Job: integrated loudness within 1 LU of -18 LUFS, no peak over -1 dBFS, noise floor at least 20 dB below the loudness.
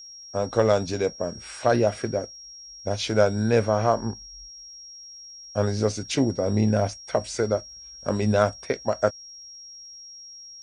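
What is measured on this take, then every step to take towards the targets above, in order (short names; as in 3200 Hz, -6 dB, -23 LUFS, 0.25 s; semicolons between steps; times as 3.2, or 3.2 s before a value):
ticks 29/s; steady tone 5600 Hz; tone level -41 dBFS; loudness -25.0 LUFS; peak -5.5 dBFS; loudness target -18.0 LUFS
-> de-click; notch 5600 Hz, Q 30; gain +7 dB; limiter -1 dBFS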